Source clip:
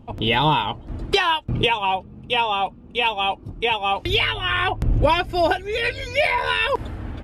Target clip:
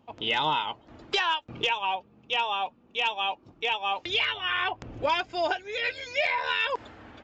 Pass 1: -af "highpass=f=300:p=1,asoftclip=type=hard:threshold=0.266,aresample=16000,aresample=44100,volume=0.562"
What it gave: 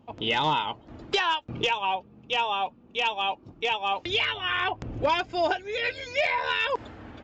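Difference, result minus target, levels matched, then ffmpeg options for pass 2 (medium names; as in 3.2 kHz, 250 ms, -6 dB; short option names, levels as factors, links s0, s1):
250 Hz band +4.0 dB
-af "highpass=f=700:p=1,asoftclip=type=hard:threshold=0.266,aresample=16000,aresample=44100,volume=0.562"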